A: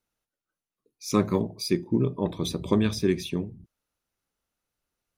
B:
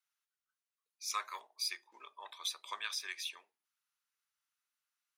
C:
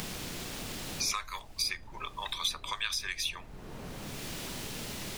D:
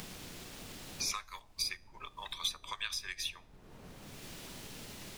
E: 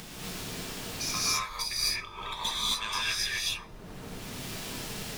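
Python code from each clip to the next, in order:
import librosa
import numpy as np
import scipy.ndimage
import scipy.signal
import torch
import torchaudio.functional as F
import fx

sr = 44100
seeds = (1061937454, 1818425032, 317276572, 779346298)

y1 = scipy.signal.sosfilt(scipy.signal.butter(4, 1100.0, 'highpass', fs=sr, output='sos'), x)
y1 = fx.high_shelf(y1, sr, hz=11000.0, db=-3.5)
y1 = F.gain(torch.from_numpy(y1), -3.0).numpy()
y2 = fx.dmg_noise_colour(y1, sr, seeds[0], colour='brown', level_db=-57.0)
y2 = fx.band_squash(y2, sr, depth_pct=100)
y2 = F.gain(torch.from_numpy(y2), 8.5).numpy()
y3 = fx.comb_fb(y2, sr, f0_hz=93.0, decay_s=0.67, harmonics='all', damping=0.0, mix_pct=40)
y3 = fx.upward_expand(y3, sr, threshold_db=-50.0, expansion=1.5)
y3 = F.gain(torch.from_numpy(y3), 1.5).numpy()
y4 = fx.diode_clip(y3, sr, knee_db=-30.5)
y4 = fx.rev_gated(y4, sr, seeds[1], gate_ms=290, shape='rising', drr_db=-8.0)
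y4 = F.gain(torch.from_numpy(y4), 2.0).numpy()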